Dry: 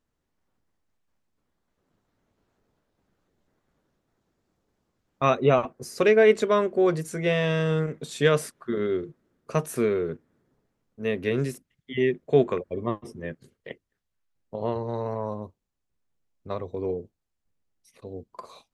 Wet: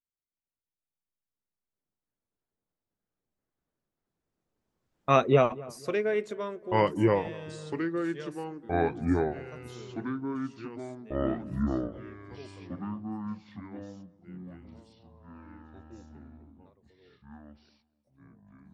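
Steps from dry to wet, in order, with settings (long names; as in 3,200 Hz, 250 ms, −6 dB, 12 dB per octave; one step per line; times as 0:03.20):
source passing by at 0:05.21, 9 m/s, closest 2.3 metres
delay with pitch and tempo change per echo 313 ms, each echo −4 semitones, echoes 3
feedback echo with a low-pass in the loop 245 ms, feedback 39%, low-pass 1,500 Hz, level −20 dB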